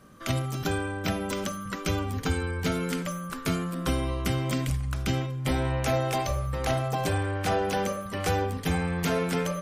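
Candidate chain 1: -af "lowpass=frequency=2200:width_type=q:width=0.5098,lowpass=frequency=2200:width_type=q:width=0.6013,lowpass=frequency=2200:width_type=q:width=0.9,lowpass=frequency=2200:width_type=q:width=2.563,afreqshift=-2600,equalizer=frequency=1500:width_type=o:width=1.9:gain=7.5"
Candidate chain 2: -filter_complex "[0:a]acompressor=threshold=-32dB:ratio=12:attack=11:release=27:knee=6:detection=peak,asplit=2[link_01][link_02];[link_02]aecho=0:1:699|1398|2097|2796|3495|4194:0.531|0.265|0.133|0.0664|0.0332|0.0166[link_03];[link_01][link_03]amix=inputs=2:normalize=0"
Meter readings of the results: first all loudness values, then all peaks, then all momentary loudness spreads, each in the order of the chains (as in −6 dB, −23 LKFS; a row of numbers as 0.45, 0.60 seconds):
−20.5, −32.5 LKFS; −7.5, −17.0 dBFS; 5, 2 LU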